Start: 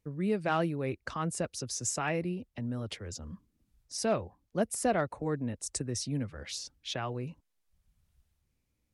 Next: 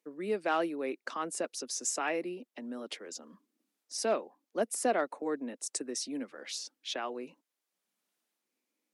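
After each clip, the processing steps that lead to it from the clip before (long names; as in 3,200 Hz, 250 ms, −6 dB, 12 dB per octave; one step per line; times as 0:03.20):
Butterworth high-pass 250 Hz 36 dB per octave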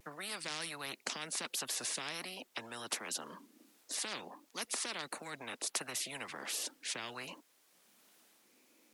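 pitch vibrato 1.4 Hz 65 cents
every bin compressed towards the loudest bin 10 to 1
level −2 dB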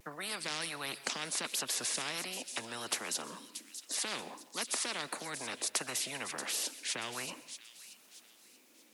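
delay with a high-pass on its return 631 ms, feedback 35%, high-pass 3,400 Hz, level −9 dB
dense smooth reverb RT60 0.6 s, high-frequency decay 0.95×, pre-delay 110 ms, DRR 15 dB
level +3 dB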